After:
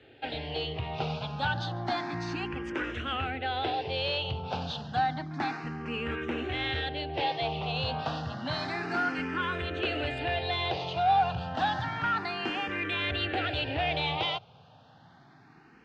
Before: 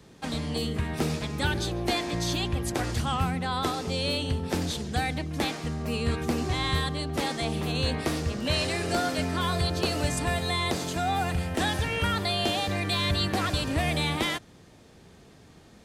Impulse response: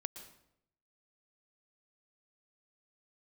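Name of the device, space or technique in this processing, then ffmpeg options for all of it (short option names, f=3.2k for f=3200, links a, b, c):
barber-pole phaser into a guitar amplifier: -filter_complex "[0:a]asplit=2[a][b];[b]afreqshift=0.3[c];[a][c]amix=inputs=2:normalize=1,asoftclip=type=tanh:threshold=-23.5dB,highpass=100,equalizer=f=120:t=q:w=4:g=4,equalizer=f=200:t=q:w=4:g=-9,equalizer=f=790:t=q:w=4:g=8,equalizer=f=1.5k:t=q:w=4:g=6,equalizer=f=2.8k:t=q:w=4:g=7,lowpass=f=4.1k:w=0.5412,lowpass=f=4.1k:w=1.3066"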